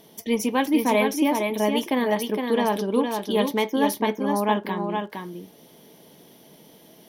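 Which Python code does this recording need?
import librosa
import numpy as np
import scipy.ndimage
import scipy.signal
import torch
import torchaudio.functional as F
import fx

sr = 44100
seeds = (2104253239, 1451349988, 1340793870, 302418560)

y = fx.fix_declick_ar(x, sr, threshold=6.5)
y = fx.fix_echo_inverse(y, sr, delay_ms=463, level_db=-5.0)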